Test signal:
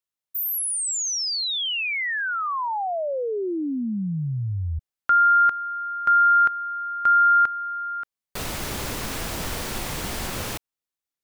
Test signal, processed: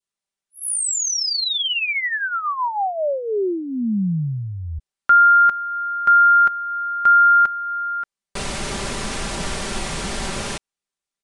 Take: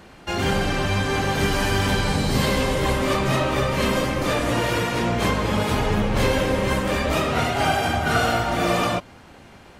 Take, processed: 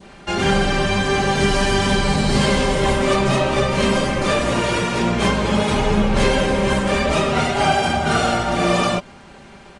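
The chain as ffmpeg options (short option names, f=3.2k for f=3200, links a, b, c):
-af "aecho=1:1:5.1:0.49,aresample=22050,aresample=44100,adynamicequalizer=threshold=0.0501:dfrequency=1600:dqfactor=0.88:tfrequency=1600:tqfactor=0.88:attack=5:release=100:ratio=0.375:range=2:mode=cutabove:tftype=bell,volume=3dB"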